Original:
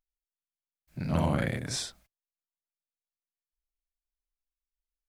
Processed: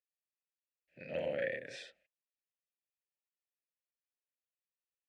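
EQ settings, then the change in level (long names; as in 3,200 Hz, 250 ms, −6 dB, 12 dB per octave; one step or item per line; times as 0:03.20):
formant filter e
parametric band 2,500 Hz +6.5 dB 1 octave
+3.0 dB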